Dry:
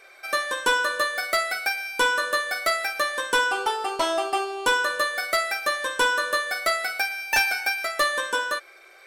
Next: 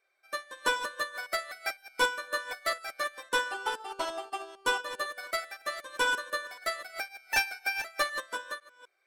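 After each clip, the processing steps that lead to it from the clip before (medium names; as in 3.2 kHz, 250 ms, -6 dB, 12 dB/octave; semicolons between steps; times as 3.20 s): chunks repeated in reverse 253 ms, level -5.5 dB; upward expansion 2.5:1, over -32 dBFS; trim -4 dB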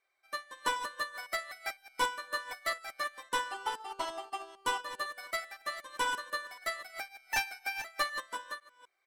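comb 1 ms, depth 38%; trim -3.5 dB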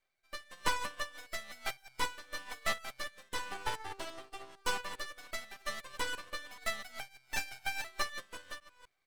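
rotary cabinet horn 1 Hz; half-wave rectifier; trim +4.5 dB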